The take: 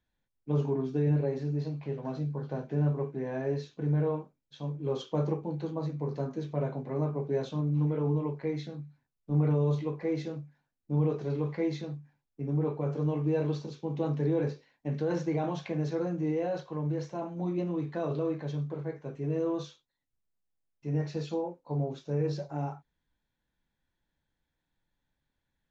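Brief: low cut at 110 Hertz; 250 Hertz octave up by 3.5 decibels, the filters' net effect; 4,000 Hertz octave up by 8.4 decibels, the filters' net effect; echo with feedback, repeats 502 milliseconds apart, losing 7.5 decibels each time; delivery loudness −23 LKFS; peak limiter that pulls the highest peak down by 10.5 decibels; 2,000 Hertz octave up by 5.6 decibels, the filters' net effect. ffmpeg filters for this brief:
ffmpeg -i in.wav -af "highpass=110,equalizer=frequency=250:width_type=o:gain=6,equalizer=frequency=2000:width_type=o:gain=5,equalizer=frequency=4000:width_type=o:gain=8.5,alimiter=level_in=2dB:limit=-24dB:level=0:latency=1,volume=-2dB,aecho=1:1:502|1004|1506|2008|2510:0.422|0.177|0.0744|0.0312|0.0131,volume=11.5dB" out.wav

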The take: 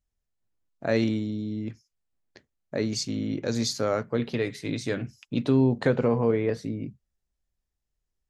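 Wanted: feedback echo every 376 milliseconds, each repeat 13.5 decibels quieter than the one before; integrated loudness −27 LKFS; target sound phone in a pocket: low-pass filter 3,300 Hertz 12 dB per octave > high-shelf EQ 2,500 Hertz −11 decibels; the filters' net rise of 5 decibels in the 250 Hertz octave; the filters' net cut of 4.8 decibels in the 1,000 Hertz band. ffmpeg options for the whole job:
ffmpeg -i in.wav -af "lowpass=3300,equalizer=frequency=250:width_type=o:gain=6,equalizer=frequency=1000:width_type=o:gain=-5,highshelf=frequency=2500:gain=-11,aecho=1:1:376|752:0.211|0.0444,volume=-2.5dB" out.wav

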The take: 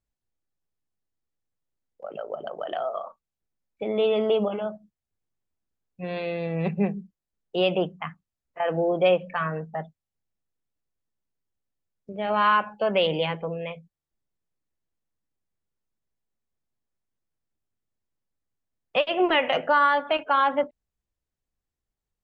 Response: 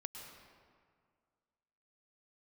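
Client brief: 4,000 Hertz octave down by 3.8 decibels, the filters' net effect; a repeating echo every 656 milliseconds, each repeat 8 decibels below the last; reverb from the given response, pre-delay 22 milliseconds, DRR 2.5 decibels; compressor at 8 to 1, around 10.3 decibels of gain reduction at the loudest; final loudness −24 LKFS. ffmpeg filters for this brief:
-filter_complex "[0:a]equalizer=frequency=4000:width_type=o:gain=-6,acompressor=threshold=-27dB:ratio=8,aecho=1:1:656|1312|1968|2624|3280:0.398|0.159|0.0637|0.0255|0.0102,asplit=2[link_01][link_02];[1:a]atrim=start_sample=2205,adelay=22[link_03];[link_02][link_03]afir=irnorm=-1:irlink=0,volume=0.5dB[link_04];[link_01][link_04]amix=inputs=2:normalize=0,volume=7.5dB"

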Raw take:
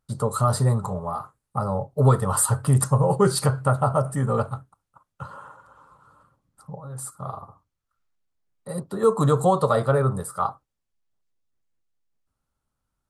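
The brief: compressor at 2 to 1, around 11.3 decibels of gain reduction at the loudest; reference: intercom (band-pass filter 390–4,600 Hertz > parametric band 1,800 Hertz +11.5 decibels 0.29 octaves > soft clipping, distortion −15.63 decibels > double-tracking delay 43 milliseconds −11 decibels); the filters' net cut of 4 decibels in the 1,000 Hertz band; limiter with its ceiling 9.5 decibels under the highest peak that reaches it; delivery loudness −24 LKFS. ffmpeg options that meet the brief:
ffmpeg -i in.wav -filter_complex "[0:a]equalizer=frequency=1000:width_type=o:gain=-6,acompressor=threshold=-35dB:ratio=2,alimiter=level_in=4dB:limit=-24dB:level=0:latency=1,volume=-4dB,highpass=390,lowpass=4600,equalizer=frequency=1800:width_type=o:width=0.29:gain=11.5,asoftclip=threshold=-34.5dB,asplit=2[link_01][link_02];[link_02]adelay=43,volume=-11dB[link_03];[link_01][link_03]amix=inputs=2:normalize=0,volume=20.5dB" out.wav

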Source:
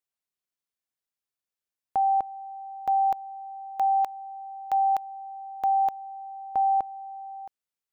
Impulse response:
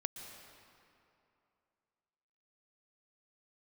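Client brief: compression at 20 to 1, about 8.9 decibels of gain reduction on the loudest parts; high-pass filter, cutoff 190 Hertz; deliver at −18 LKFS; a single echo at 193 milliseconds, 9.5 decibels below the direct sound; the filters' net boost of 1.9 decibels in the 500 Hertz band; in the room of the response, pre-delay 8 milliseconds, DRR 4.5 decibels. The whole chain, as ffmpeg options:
-filter_complex "[0:a]highpass=190,equalizer=frequency=500:width_type=o:gain=3,acompressor=threshold=-28dB:ratio=20,aecho=1:1:193:0.335,asplit=2[link_01][link_02];[1:a]atrim=start_sample=2205,adelay=8[link_03];[link_02][link_03]afir=irnorm=-1:irlink=0,volume=-4dB[link_04];[link_01][link_04]amix=inputs=2:normalize=0,volume=15.5dB"

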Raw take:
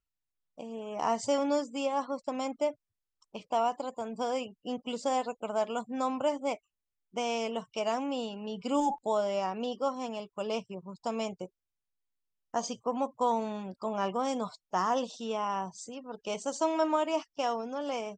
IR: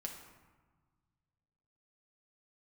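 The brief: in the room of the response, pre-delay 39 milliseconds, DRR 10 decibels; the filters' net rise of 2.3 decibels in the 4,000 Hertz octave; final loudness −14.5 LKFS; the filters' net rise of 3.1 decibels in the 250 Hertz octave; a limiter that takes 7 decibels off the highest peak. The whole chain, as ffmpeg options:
-filter_complex "[0:a]equalizer=frequency=250:width_type=o:gain=3.5,equalizer=frequency=4000:width_type=o:gain=3.5,alimiter=limit=-22.5dB:level=0:latency=1,asplit=2[link_01][link_02];[1:a]atrim=start_sample=2205,adelay=39[link_03];[link_02][link_03]afir=irnorm=-1:irlink=0,volume=-8dB[link_04];[link_01][link_04]amix=inputs=2:normalize=0,volume=19dB"

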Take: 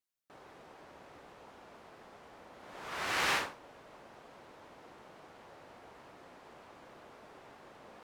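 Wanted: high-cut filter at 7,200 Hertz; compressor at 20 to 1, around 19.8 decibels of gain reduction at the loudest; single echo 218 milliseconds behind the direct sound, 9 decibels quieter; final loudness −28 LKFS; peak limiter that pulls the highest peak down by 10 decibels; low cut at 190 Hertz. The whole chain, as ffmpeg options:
ffmpeg -i in.wav -af "highpass=190,lowpass=7200,acompressor=threshold=-47dB:ratio=20,alimiter=level_in=24dB:limit=-24dB:level=0:latency=1,volume=-24dB,aecho=1:1:218:0.355,volume=28.5dB" out.wav

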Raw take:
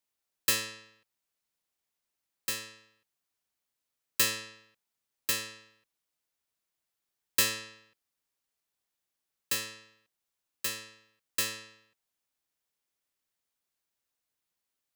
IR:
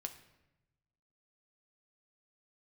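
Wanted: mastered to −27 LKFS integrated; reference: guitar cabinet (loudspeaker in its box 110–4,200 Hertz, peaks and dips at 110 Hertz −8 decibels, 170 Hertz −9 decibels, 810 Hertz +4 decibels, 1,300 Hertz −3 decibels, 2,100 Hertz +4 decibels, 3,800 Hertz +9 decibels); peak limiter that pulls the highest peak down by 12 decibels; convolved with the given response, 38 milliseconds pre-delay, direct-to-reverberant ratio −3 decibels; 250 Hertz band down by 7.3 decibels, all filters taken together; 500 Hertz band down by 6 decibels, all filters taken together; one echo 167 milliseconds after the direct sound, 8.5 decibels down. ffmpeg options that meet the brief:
-filter_complex "[0:a]equalizer=frequency=250:width_type=o:gain=-6,equalizer=frequency=500:width_type=o:gain=-5.5,alimiter=level_in=0.5dB:limit=-24dB:level=0:latency=1,volume=-0.5dB,aecho=1:1:167:0.376,asplit=2[link_01][link_02];[1:a]atrim=start_sample=2205,adelay=38[link_03];[link_02][link_03]afir=irnorm=-1:irlink=0,volume=5.5dB[link_04];[link_01][link_04]amix=inputs=2:normalize=0,highpass=110,equalizer=frequency=110:width_type=q:width=4:gain=-8,equalizer=frequency=170:width_type=q:width=4:gain=-9,equalizer=frequency=810:width_type=q:width=4:gain=4,equalizer=frequency=1300:width_type=q:width=4:gain=-3,equalizer=frequency=2100:width_type=q:width=4:gain=4,equalizer=frequency=3800:width_type=q:width=4:gain=9,lowpass=frequency=4200:width=0.5412,lowpass=frequency=4200:width=1.3066,volume=7.5dB"

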